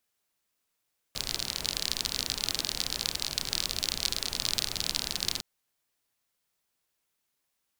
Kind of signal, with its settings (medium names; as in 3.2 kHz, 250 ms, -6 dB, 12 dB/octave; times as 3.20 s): rain from filtered ticks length 4.26 s, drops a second 40, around 4.3 kHz, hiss -8 dB